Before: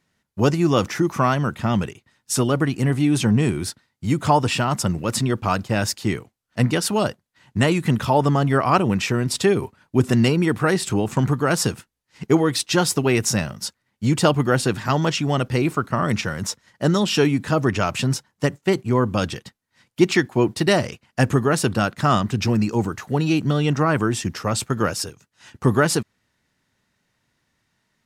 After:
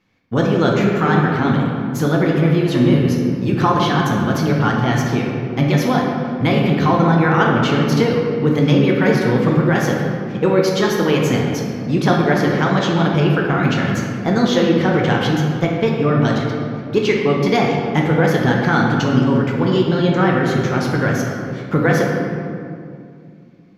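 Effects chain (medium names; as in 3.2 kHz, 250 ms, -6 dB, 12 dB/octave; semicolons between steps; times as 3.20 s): band-stop 530 Hz, Q 12; in parallel at +2.5 dB: compression, threshold -26 dBFS, peak gain reduction 15.5 dB; on the sum: wide varispeed 1.18×; boxcar filter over 5 samples; reverberation RT60 2.4 s, pre-delay 6 ms, DRR -2 dB; trim -3 dB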